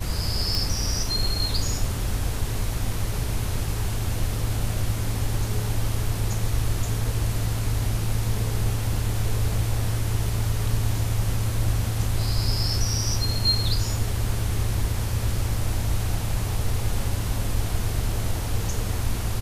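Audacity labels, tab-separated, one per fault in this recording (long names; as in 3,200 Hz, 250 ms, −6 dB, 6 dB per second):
0.550000	0.550000	click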